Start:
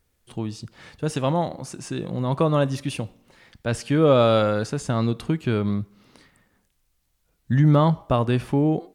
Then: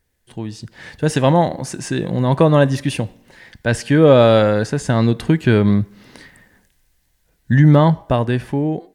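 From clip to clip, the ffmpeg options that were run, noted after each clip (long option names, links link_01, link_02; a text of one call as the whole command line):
ffmpeg -i in.wav -af "superequalizer=10b=0.631:11b=1.78,dynaudnorm=framelen=110:gausssize=17:maxgain=14.5dB,adynamicequalizer=threshold=0.0316:dfrequency=2000:dqfactor=0.7:tfrequency=2000:tqfactor=0.7:attack=5:release=100:ratio=0.375:range=1.5:mode=cutabove:tftype=highshelf" out.wav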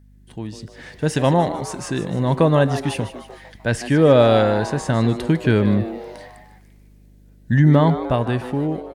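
ffmpeg -i in.wav -filter_complex "[0:a]aeval=exprs='val(0)+0.00562*(sin(2*PI*50*n/s)+sin(2*PI*2*50*n/s)/2+sin(2*PI*3*50*n/s)/3+sin(2*PI*4*50*n/s)/4+sin(2*PI*5*50*n/s)/5)':channel_layout=same,asplit=2[link_01][link_02];[link_02]asplit=5[link_03][link_04][link_05][link_06][link_07];[link_03]adelay=151,afreqshift=130,volume=-13dB[link_08];[link_04]adelay=302,afreqshift=260,volume=-18.8dB[link_09];[link_05]adelay=453,afreqshift=390,volume=-24.7dB[link_10];[link_06]adelay=604,afreqshift=520,volume=-30.5dB[link_11];[link_07]adelay=755,afreqshift=650,volume=-36.4dB[link_12];[link_08][link_09][link_10][link_11][link_12]amix=inputs=5:normalize=0[link_13];[link_01][link_13]amix=inputs=2:normalize=0,volume=-3dB" out.wav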